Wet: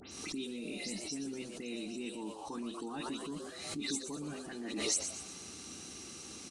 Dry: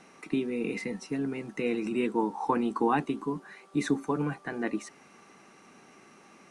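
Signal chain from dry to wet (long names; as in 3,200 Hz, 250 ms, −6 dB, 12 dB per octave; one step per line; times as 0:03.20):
every frequency bin delayed by itself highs late, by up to 111 ms
on a send: echo with shifted repeats 120 ms, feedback 45%, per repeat +110 Hz, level −10 dB
on the sum: noise in a band 72–490 Hz −58 dBFS
reversed playback
downward compressor 5 to 1, threshold −42 dBFS, peak gain reduction 19 dB
reversed playback
graphic EQ with 10 bands 125 Hz −10 dB, 500 Hz −9 dB, 1,000 Hz −9 dB, 2,000 Hz −10 dB, 4,000 Hz +9 dB, 8,000 Hz +10 dB
background raised ahead of every attack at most 46 dB per second
level +7.5 dB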